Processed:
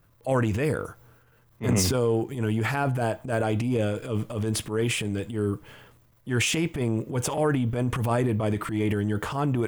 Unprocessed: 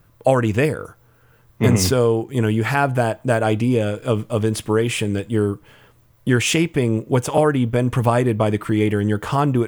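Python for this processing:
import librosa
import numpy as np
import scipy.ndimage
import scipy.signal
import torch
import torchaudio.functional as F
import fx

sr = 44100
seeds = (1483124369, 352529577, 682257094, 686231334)

y = fx.transient(x, sr, attack_db=-10, sustain_db=7)
y = y * librosa.db_to_amplitude(-6.5)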